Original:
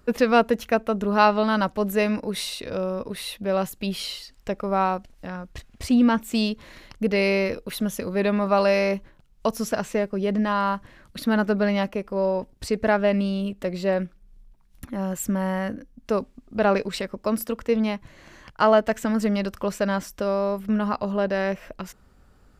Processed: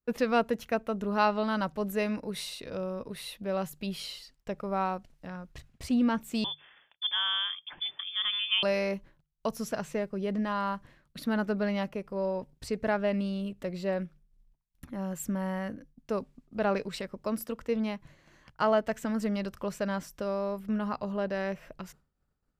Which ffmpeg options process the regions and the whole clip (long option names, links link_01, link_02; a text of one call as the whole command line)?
ffmpeg -i in.wav -filter_complex "[0:a]asettb=1/sr,asplit=3[link_01][link_02][link_03];[link_01]atrim=end=6.444[link_04];[link_02]atrim=start=6.44:end=8.63,asetpts=PTS-STARTPTS,afade=type=in:duration=0.004:curve=qsin,afade=type=out:start_time=2.186:duration=0.004:curve=qsin,highpass=frequency=200:width=0.5412,highpass=frequency=200:width=1.3066,lowpass=frequency=3100:width_type=q:width=0.5098,lowpass=frequency=3100:width_type=q:width=0.6013,lowpass=frequency=3100:width_type=q:width=0.9,lowpass=frequency=3100:width_type=q:width=2.563,afreqshift=-3700[link_05];[link_03]atrim=start=8.626[link_06];[link_04][link_05]acrossfade=duration=0.004:curve1=hsin:curve2=qsin[link_07];[link_07][link_06]acrossfade=duration=0.004:curve1=qsin:curve2=hsin,agate=range=-33dB:threshold=-43dB:ratio=3:detection=peak,equalizer=frequency=150:width=5.9:gain=9.5,bandreject=frequency=50:width_type=h:width=6,bandreject=frequency=100:width_type=h:width=6,bandreject=frequency=150:width_type=h:width=6,volume=-8dB" out.wav